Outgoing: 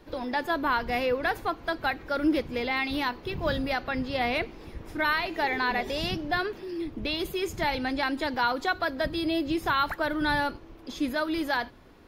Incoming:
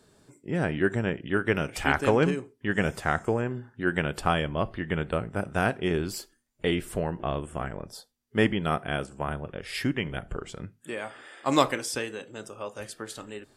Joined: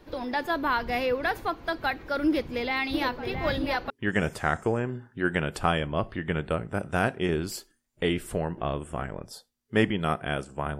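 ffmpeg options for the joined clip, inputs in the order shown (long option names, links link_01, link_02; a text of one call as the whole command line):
ffmpeg -i cue0.wav -i cue1.wav -filter_complex "[0:a]asplit=3[link_01][link_02][link_03];[link_01]afade=type=out:start_time=2.93:duration=0.02[link_04];[link_02]asplit=2[link_05][link_06];[link_06]adelay=669,lowpass=frequency=1800:poles=1,volume=-6dB,asplit=2[link_07][link_08];[link_08]adelay=669,lowpass=frequency=1800:poles=1,volume=0.49,asplit=2[link_09][link_10];[link_10]adelay=669,lowpass=frequency=1800:poles=1,volume=0.49,asplit=2[link_11][link_12];[link_12]adelay=669,lowpass=frequency=1800:poles=1,volume=0.49,asplit=2[link_13][link_14];[link_14]adelay=669,lowpass=frequency=1800:poles=1,volume=0.49,asplit=2[link_15][link_16];[link_16]adelay=669,lowpass=frequency=1800:poles=1,volume=0.49[link_17];[link_05][link_07][link_09][link_11][link_13][link_15][link_17]amix=inputs=7:normalize=0,afade=type=in:start_time=2.93:duration=0.02,afade=type=out:start_time=3.9:duration=0.02[link_18];[link_03]afade=type=in:start_time=3.9:duration=0.02[link_19];[link_04][link_18][link_19]amix=inputs=3:normalize=0,apad=whole_dur=10.79,atrim=end=10.79,atrim=end=3.902[link_20];[1:a]atrim=start=2.518:end=9.41[link_21];[link_20][link_21]acrossfade=duration=0.004:curve1=hsin:curve2=hsin" out.wav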